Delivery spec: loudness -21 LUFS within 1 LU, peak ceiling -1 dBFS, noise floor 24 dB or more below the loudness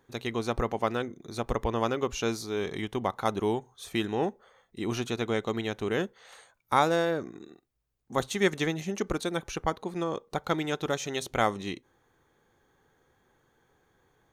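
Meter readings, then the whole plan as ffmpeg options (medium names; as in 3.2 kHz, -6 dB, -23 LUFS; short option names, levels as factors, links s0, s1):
loudness -30.5 LUFS; peak level -8.5 dBFS; loudness target -21.0 LUFS
-> -af "volume=2.99,alimiter=limit=0.891:level=0:latency=1"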